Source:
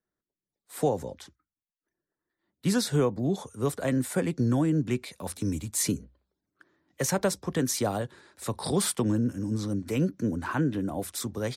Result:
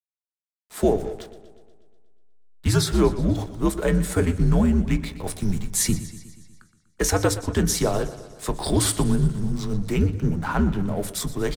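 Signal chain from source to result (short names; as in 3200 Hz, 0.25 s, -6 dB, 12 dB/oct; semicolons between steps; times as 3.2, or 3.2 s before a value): frequency shift -87 Hz; backlash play -41.5 dBFS; speakerphone echo 0.19 s, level -27 dB; on a send at -9.5 dB: reverb RT60 0.25 s, pre-delay 3 ms; on the sum: warbling echo 0.121 s, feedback 60%, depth 84 cents, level -15.5 dB; gain +5.5 dB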